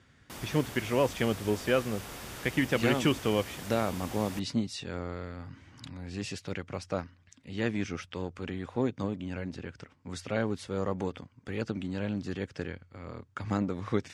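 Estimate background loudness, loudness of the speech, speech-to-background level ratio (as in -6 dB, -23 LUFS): -42.5 LUFS, -33.0 LUFS, 9.5 dB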